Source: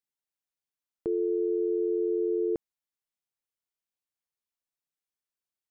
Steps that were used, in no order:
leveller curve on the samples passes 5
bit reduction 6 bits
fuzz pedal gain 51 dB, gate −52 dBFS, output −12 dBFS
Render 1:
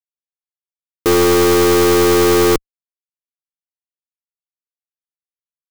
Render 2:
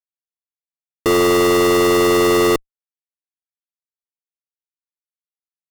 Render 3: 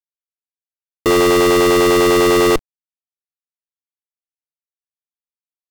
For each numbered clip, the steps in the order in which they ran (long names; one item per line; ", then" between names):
bit reduction, then fuzz pedal, then leveller curve on the samples
leveller curve on the samples, then bit reduction, then fuzz pedal
fuzz pedal, then leveller curve on the samples, then bit reduction